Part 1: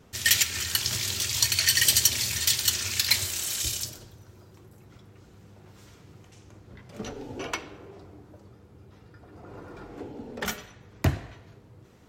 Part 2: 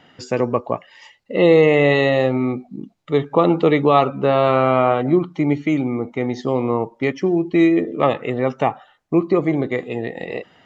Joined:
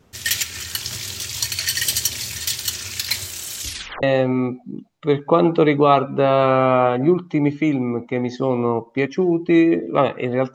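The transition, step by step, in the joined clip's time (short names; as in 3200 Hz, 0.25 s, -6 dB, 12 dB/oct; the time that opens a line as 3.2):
part 1
3.62 tape stop 0.41 s
4.03 switch to part 2 from 2.08 s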